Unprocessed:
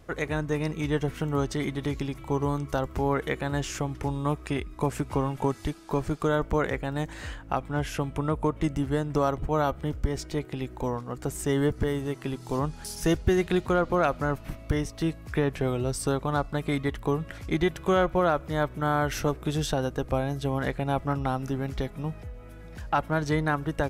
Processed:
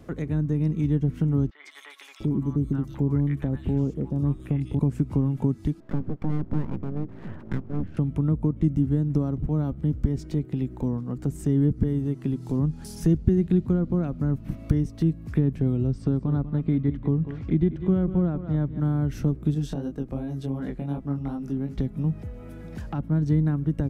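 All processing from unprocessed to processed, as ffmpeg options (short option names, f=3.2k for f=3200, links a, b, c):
-filter_complex "[0:a]asettb=1/sr,asplit=3[a][b][c];[a]atrim=end=1.504[d];[b]atrim=start=1.5:end=4.79,asetpts=PTS-STARTPTS,afade=t=in:d=0.004:c=qsin,afade=t=out:st=3.286:d=0.004:c=qsin,acrossover=split=3700[e][f];[f]acompressor=threshold=-48dB:ratio=4:attack=1:release=60[g];[e][g]amix=inputs=2:normalize=0,acrossover=split=950|3200[h][i][j];[j]adelay=150[k];[h]adelay=700[l];[l][i][k]amix=inputs=3:normalize=0,atrim=end_sample=145089[m];[c]atrim=start=4.786[n];[d][m]acrossfade=d=0.004:c1=hsin:c2=qsin[o];[o][n]acrossfade=d=0.004:c1=qsin:c2=hsin,asettb=1/sr,asplit=3[p][q][r];[p]atrim=end=5.804[s];[q]atrim=start=5.8:end=7.97,asetpts=PTS-STARTPTS,afade=t=in:d=0.004:c=qsin,afade=t=out:st=2.166:d=0.004:c=qsin,lowpass=1.1k,aeval=exprs='abs(val(0))':c=same[t];[r]atrim=start=7.966[u];[s][t]acrossfade=d=0.004:c1=hsin:c2=qsin[v];[v][u]acrossfade=d=0.004:c1=qsin:c2=hsin,asettb=1/sr,asplit=3[w][x][y];[w]atrim=end=15.874[z];[x]atrim=start=15.87:end=18.8,asetpts=PTS-STARTPTS,afade=t=in:d=0.004:c=qsin,afade=t=out:st=2.926:d=0.004:c=qsin,lowpass=3.7k,aecho=1:1:193:0.224,atrim=end_sample=129213[aa];[y]atrim=start=18.796[ab];[z][aa]acrossfade=d=0.004:c1=hsin:c2=qsin[ac];[ac][ab]acrossfade=d=0.004:c1=qsin:c2=hsin,asettb=1/sr,asplit=3[ad][ae][af];[ad]atrim=end=19.544[ag];[ae]atrim=start=19.54:end=21.78,asetpts=PTS-STARTPTS,afade=t=in:d=0.004:c=qsin,afade=t=out:st=2.236:d=0.004:c=qsin,equalizer=f=100:t=o:w=1.1:g=-10,flanger=delay=19:depth=4.2:speed=2.7[ah];[af]atrim=start=21.776[ai];[ag][ah]acrossfade=d=0.004:c1=hsin:c2=qsin[aj];[aj][ai]acrossfade=d=0.004:c1=qsin:c2=hsin,equalizer=f=220:w=0.63:g=10.5,acrossover=split=280[ak][al];[al]acompressor=threshold=-41dB:ratio=4[am];[ak][am]amix=inputs=2:normalize=0"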